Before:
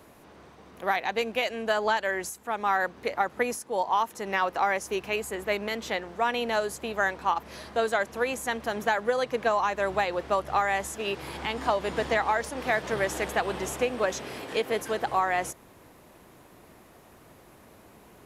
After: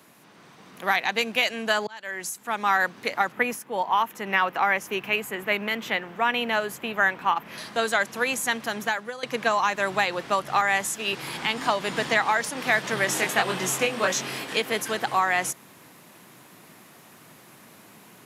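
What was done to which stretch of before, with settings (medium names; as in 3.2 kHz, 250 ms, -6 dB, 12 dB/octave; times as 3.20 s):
1.87–2.52 s: fade in
3.32–7.58 s: high-order bell 6.4 kHz -10.5 dB
8.36–9.23 s: fade out equal-power, to -16 dB
10.61–11.13 s: three bands expanded up and down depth 40%
13.06–14.43 s: doubling 22 ms -3.5 dB
whole clip: high-pass 140 Hz 24 dB/octave; peaking EQ 490 Hz -10 dB 2.3 oct; level rider gain up to 4.5 dB; trim +4 dB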